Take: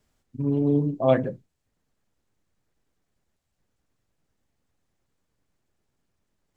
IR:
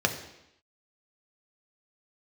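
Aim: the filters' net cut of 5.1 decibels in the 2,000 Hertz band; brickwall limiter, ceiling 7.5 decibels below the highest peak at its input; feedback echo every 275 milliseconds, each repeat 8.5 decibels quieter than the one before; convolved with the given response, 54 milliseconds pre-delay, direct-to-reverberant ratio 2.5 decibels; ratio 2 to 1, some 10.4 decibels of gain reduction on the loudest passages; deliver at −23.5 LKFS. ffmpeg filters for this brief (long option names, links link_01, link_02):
-filter_complex "[0:a]equalizer=frequency=2000:width_type=o:gain=-6.5,acompressor=threshold=-33dB:ratio=2,alimiter=limit=-24dB:level=0:latency=1,aecho=1:1:275|550|825|1100:0.376|0.143|0.0543|0.0206,asplit=2[link_01][link_02];[1:a]atrim=start_sample=2205,adelay=54[link_03];[link_02][link_03]afir=irnorm=-1:irlink=0,volume=-14dB[link_04];[link_01][link_04]amix=inputs=2:normalize=0,volume=9.5dB"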